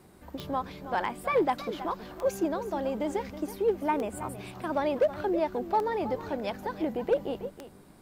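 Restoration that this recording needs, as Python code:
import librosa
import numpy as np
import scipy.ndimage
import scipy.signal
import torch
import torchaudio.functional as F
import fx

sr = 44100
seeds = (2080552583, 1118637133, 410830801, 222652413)

y = fx.fix_declip(x, sr, threshold_db=-17.5)
y = fx.fix_declick_ar(y, sr, threshold=10.0)
y = fx.fix_echo_inverse(y, sr, delay_ms=322, level_db=-13.0)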